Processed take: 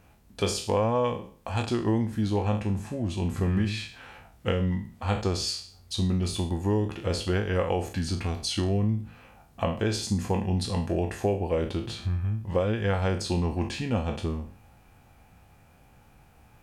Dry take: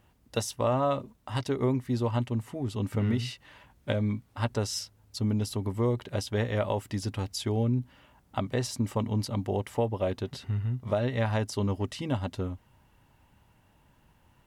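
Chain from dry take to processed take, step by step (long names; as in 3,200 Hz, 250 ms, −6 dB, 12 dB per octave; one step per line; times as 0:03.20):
peak hold with a decay on every bin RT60 0.37 s
in parallel at −2 dB: downward compressor, threshold −39 dBFS, peak gain reduction 16 dB
on the sum: speed change −13%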